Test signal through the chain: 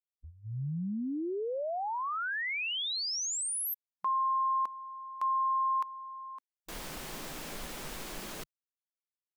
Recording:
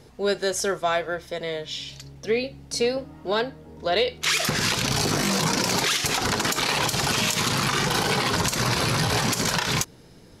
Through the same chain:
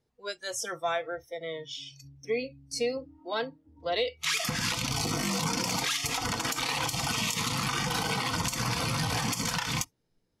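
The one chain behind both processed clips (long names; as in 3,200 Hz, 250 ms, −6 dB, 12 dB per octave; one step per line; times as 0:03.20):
noise reduction from a noise print of the clip's start 22 dB
level −6 dB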